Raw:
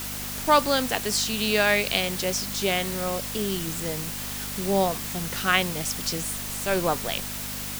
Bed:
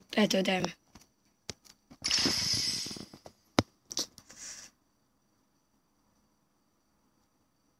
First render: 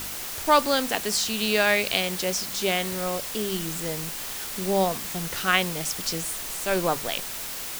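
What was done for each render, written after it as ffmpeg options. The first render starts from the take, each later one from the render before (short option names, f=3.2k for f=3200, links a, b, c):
-af "bandreject=f=50:t=h:w=4,bandreject=f=100:t=h:w=4,bandreject=f=150:t=h:w=4,bandreject=f=200:t=h:w=4,bandreject=f=250:t=h:w=4"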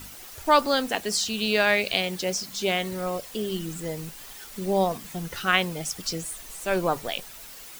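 -af "afftdn=nr=11:nf=-34"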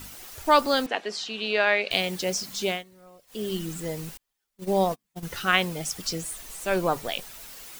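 -filter_complex "[0:a]asettb=1/sr,asplit=3[a][b][c];[a]atrim=end=0.864[d];[b]atrim=start=0.86:end=1.91,asetpts=PTS-STARTPTS,afade=t=in:d=0.004:c=qsin,afade=t=out:st=1.046:d=0.004:c=qsin,highpass=340,lowpass=3.4k[e];[c]atrim=start=1.906[f];[d][e]acrossfade=d=0.004:c1=hsin:c2=qsin[g];[g][f]acrossfade=d=0.004:c1=qsin:c2=hsin,asettb=1/sr,asplit=3[h][i][j];[h]atrim=end=4.174[k];[i]atrim=start=4.17:end=5.23,asetpts=PTS-STARTPTS,afade=t=in:d=0.004:c=qsin,afade=t=out:st=1.056:d=0.004:c=qsin,agate=range=-39dB:threshold=-31dB:ratio=16:release=100:detection=peak[l];[j]atrim=start=5.226[m];[k][l]acrossfade=d=0.004:c1=hsin:c2=qsin[n];[n][m]acrossfade=d=0.004:c1=qsin:c2=hsin,asplit=3[o][p][q];[o]atrim=end=2.84,asetpts=PTS-STARTPTS,afade=t=out:st=2.58:d=0.26:c=qsin:silence=0.0794328[r];[p]atrim=start=2.84:end=3.27,asetpts=PTS-STARTPTS,volume=-22dB[s];[q]atrim=start=3.27,asetpts=PTS-STARTPTS,afade=t=in:d=0.26:c=qsin:silence=0.0794328[t];[r][s][t]concat=n=3:v=0:a=1"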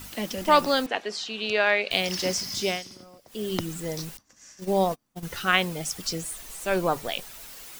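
-filter_complex "[1:a]volume=-5.5dB[a];[0:a][a]amix=inputs=2:normalize=0"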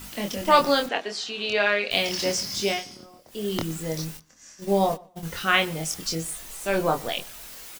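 -filter_complex "[0:a]asplit=2[a][b];[b]adelay=25,volume=-4dB[c];[a][c]amix=inputs=2:normalize=0,asplit=2[d][e];[e]adelay=120,lowpass=f=3.8k:p=1,volume=-22.5dB,asplit=2[f][g];[g]adelay=120,lowpass=f=3.8k:p=1,volume=0.21[h];[d][f][h]amix=inputs=3:normalize=0"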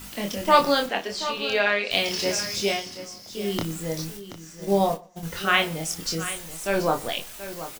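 -filter_complex "[0:a]asplit=2[a][b];[b]adelay=35,volume=-13dB[c];[a][c]amix=inputs=2:normalize=0,aecho=1:1:730:0.224"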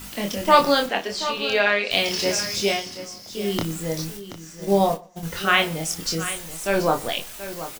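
-af "volume=2.5dB,alimiter=limit=-3dB:level=0:latency=1"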